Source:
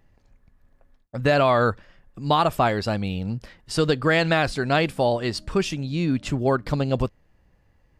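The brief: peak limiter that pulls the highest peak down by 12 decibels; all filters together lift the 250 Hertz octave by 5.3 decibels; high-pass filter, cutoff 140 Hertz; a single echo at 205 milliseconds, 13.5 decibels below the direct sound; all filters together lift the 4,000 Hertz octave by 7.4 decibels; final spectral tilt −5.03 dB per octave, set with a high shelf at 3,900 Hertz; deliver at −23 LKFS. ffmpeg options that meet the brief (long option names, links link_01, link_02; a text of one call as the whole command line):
ffmpeg -i in.wav -af "highpass=140,equalizer=frequency=250:width_type=o:gain=7.5,highshelf=frequency=3900:gain=3.5,equalizer=frequency=4000:width_type=o:gain=7,alimiter=limit=-14.5dB:level=0:latency=1,aecho=1:1:205:0.211,volume=2.5dB" out.wav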